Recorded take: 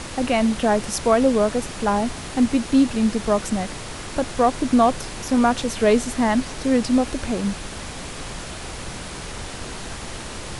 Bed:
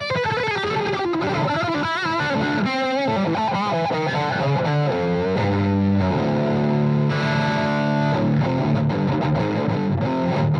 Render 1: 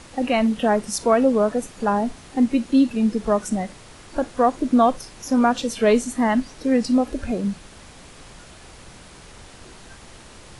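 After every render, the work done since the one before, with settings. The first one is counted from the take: noise print and reduce 11 dB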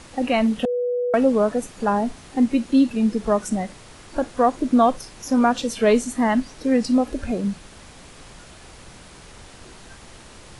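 0.65–1.14 bleep 490 Hz -20 dBFS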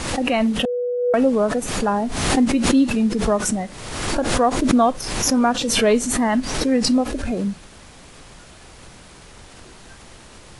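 backwards sustainer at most 42 dB/s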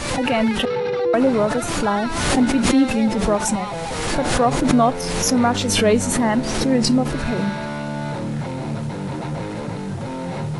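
add bed -6.5 dB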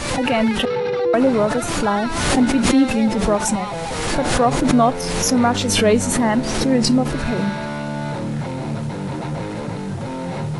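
gain +1 dB; limiter -3 dBFS, peak gain reduction 1.5 dB

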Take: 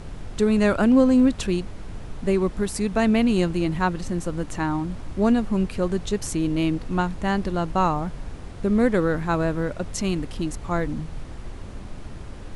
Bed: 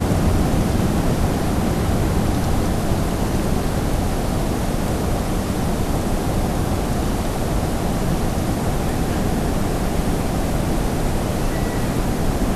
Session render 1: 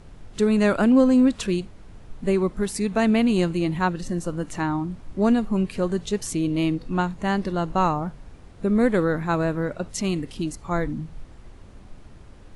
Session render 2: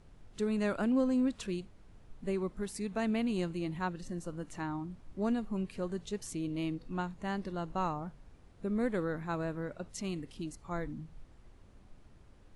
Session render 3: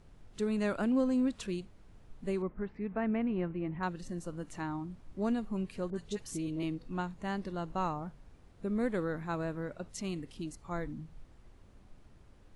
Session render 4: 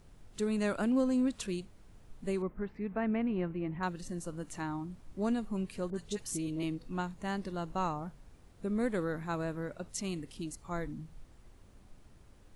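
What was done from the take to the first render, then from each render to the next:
noise print and reduce 9 dB
gain -12.5 dB
2.42–3.83 LPF 2200 Hz 24 dB/oct; 5.9–6.63 dispersion highs, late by 41 ms, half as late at 1300 Hz
high shelf 7000 Hz +10 dB

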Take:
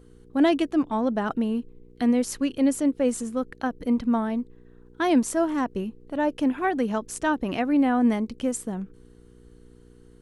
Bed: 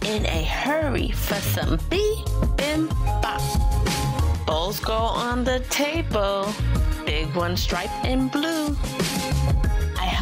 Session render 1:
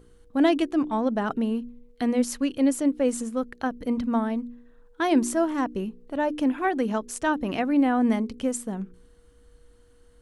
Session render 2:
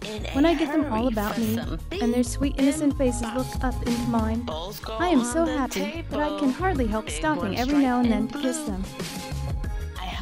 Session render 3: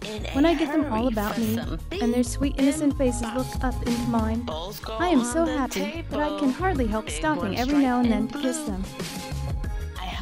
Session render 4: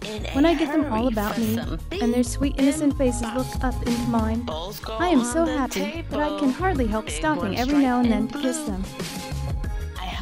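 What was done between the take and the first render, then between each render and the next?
de-hum 60 Hz, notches 7
add bed -8.5 dB
nothing audible
gain +1.5 dB

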